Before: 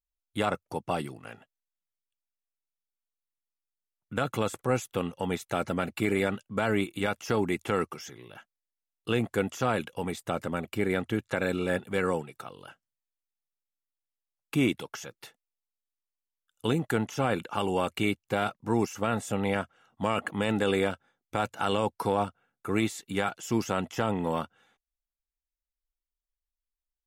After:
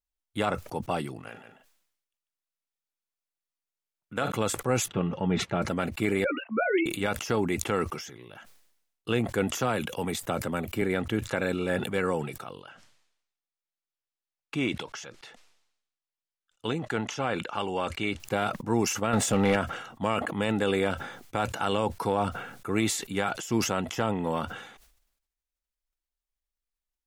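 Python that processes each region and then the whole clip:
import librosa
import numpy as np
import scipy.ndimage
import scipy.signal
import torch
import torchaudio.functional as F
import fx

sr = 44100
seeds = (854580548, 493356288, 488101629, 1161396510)

y = fx.chain(x, sr, fx.low_shelf(hz=150.0, db=-9.0),
    fx.doubler(ms=43.0, db=-12.5),
    fx.echo_single(ms=145, db=-7.0), at=(1.29, 4.32))
y = fx.chain(y, sr, fx.lowpass(hz=2700.0, slope=12),
    fx.peak_eq(hz=190.0, db=8.0, octaves=1.3),
    fx.notch_comb(f0_hz=250.0), at=(4.88, 5.62))
y = fx.chain(y, sr, fx.sine_speech(),
    fx.doubler(ms=13.0, db=-5.0), at=(6.24, 6.86))
y = fx.chain(y, sr, fx.high_shelf(hz=12000.0, db=10.5),
    fx.band_squash(depth_pct=40), at=(9.55, 10.82))
y = fx.chain(y, sr, fx.lowpass(hz=6300.0, slope=12),
    fx.low_shelf(hz=460.0, db=-6.0), at=(12.6, 18.2))
y = fx.chain(y, sr, fx.high_shelf(hz=10000.0, db=-9.0),
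    fx.leveller(passes=2), at=(19.13, 19.56))
y = fx.high_shelf(y, sr, hz=12000.0, db=-4.0)
y = fx.sustainer(y, sr, db_per_s=66.0)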